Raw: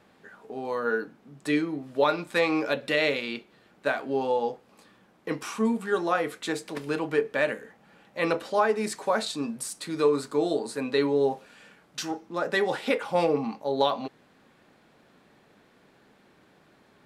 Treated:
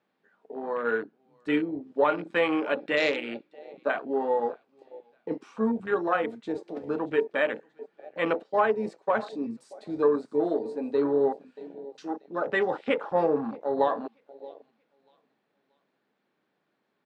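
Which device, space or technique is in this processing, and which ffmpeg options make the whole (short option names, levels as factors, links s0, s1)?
over-cleaned archive recording: -filter_complex "[0:a]aecho=1:1:632|1264|1896:0.141|0.0537|0.0204,asettb=1/sr,asplit=3[s0][s1][s2];[s0]atrim=end=8.254[s3];[s1]atrim=start=8.25:end=9.15,asetpts=PTS-STARTPTS,afade=t=in:d=0.004:c=qsin,afade=t=out:st=0.896:d=0.004:c=qsin,agate=range=0.398:threshold=0.0251:ratio=16:detection=peak[s4];[s2]atrim=start=9.146[s5];[s3][s4]acrossfade=d=0.004:c1=hsin:c2=qsin[s6];[s6][s5]acrossfade=d=0.004:c1=qsin:c2=hsin,highpass=180,lowpass=5100,afwtdn=0.0282"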